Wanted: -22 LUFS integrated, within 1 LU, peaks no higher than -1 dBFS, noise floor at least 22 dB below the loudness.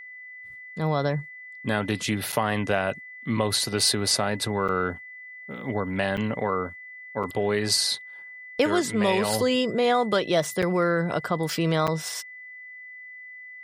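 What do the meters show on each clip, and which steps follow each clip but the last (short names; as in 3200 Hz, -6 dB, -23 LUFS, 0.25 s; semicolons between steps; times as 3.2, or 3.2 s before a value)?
dropouts 6; longest dropout 6.6 ms; steady tone 2000 Hz; tone level -40 dBFS; loudness -25.5 LUFS; peak -9.0 dBFS; loudness target -22.0 LUFS
-> interpolate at 2.32/4.68/6.17/7.23/10.62/11.87, 6.6 ms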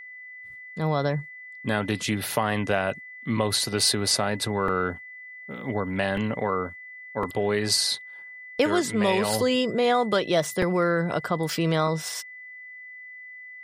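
dropouts 0; steady tone 2000 Hz; tone level -40 dBFS
-> notch 2000 Hz, Q 30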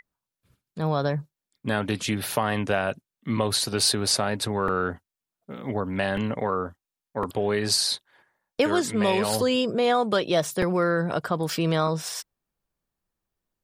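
steady tone none; loudness -25.0 LUFS; peak -9.0 dBFS; loudness target -22.0 LUFS
-> gain +3 dB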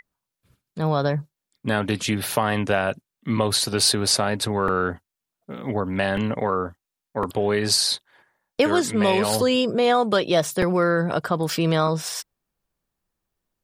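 loudness -22.0 LUFS; peak -6.0 dBFS; noise floor -86 dBFS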